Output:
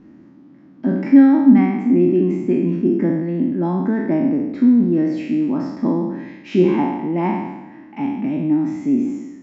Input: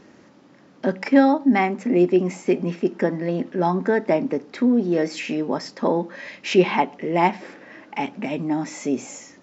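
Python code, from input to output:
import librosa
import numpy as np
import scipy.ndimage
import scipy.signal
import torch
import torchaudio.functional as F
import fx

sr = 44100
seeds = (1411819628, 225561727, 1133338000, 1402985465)

y = fx.spec_trails(x, sr, decay_s=1.05)
y = fx.lowpass(y, sr, hz=1300.0, slope=6)
y = fx.low_shelf_res(y, sr, hz=370.0, db=6.5, q=3.0)
y = F.gain(torch.from_numpy(y), -5.0).numpy()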